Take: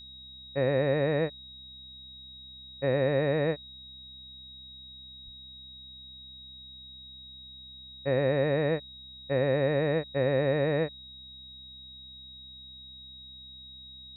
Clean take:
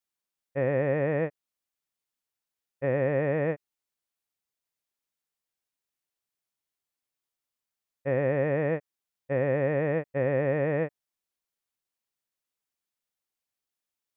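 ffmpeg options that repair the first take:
-filter_complex "[0:a]bandreject=f=64.7:t=h:w=4,bandreject=f=129.4:t=h:w=4,bandreject=f=194.1:t=h:w=4,bandreject=f=258.8:t=h:w=4,bandreject=f=3.8k:w=30,asplit=3[a][b][c];[a]afade=t=out:st=5.24:d=0.02[d];[b]highpass=f=140:w=0.5412,highpass=f=140:w=1.3066,afade=t=in:st=5.24:d=0.02,afade=t=out:st=5.36:d=0.02[e];[c]afade=t=in:st=5.36:d=0.02[f];[d][e][f]amix=inputs=3:normalize=0"

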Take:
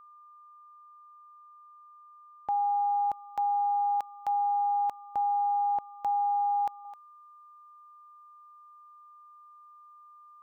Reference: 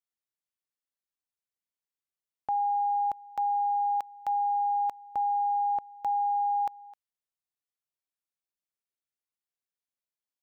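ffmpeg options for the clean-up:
-af "bandreject=f=1.2k:w=30,asetnsamples=n=441:p=0,asendcmd='6.85 volume volume -4.5dB',volume=0dB"

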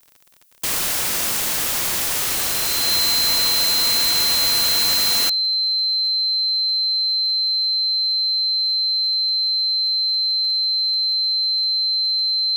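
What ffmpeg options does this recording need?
-af "adeclick=t=4,bandreject=f=4.1k:w=30,agate=range=-21dB:threshold=-14dB"

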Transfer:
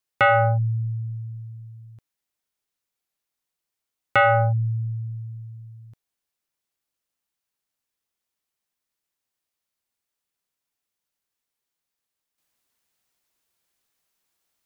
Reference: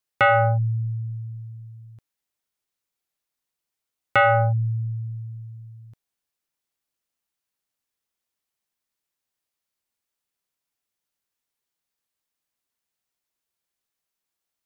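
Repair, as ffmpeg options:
-af "asetnsamples=n=441:p=0,asendcmd='12.38 volume volume -8dB',volume=0dB"

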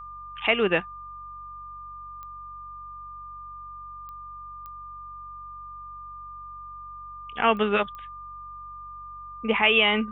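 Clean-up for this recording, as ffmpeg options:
-af "adeclick=t=4,bandreject=f=46.9:t=h:w=4,bandreject=f=93.8:t=h:w=4,bandreject=f=140.7:t=h:w=4,bandreject=f=1.2k:w=30"

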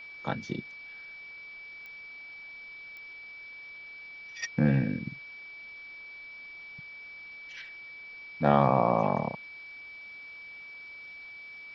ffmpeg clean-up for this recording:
-af "adeclick=t=4,bandreject=f=2.3k:w=30,afwtdn=0.002"

